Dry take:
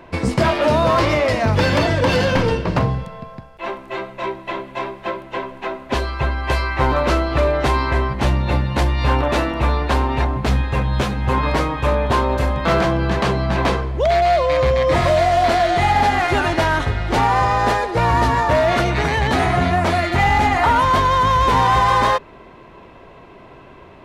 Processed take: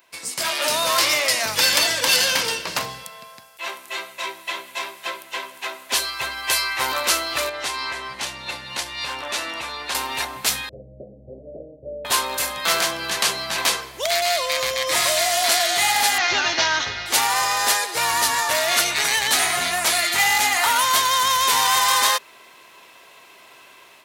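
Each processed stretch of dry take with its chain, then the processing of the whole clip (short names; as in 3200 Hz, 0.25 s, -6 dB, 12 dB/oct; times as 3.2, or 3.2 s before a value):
7.49–9.95 air absorption 52 m + compressor 3:1, threshold -19 dBFS
10.69–12.05 steep low-pass 640 Hz 96 dB/oct + dynamic EQ 280 Hz, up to -5 dB, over -36 dBFS, Q 1
16.18–17.06 steep low-pass 6400 Hz 72 dB/oct + low shelf 340 Hz +4.5 dB
whole clip: differentiator; AGC gain up to 11.5 dB; high shelf 6100 Hz +10 dB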